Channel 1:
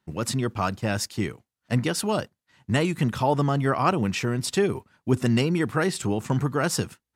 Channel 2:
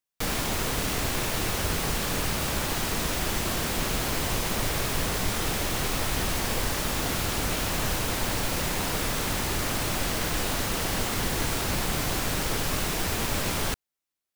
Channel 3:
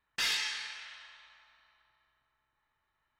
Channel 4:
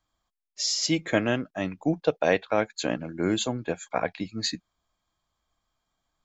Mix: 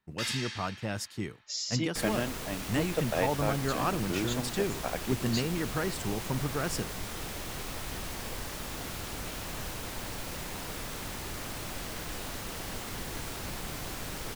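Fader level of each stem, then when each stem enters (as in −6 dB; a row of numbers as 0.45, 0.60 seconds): −8.5, −10.5, −4.0, −8.0 decibels; 0.00, 1.75, 0.00, 0.90 seconds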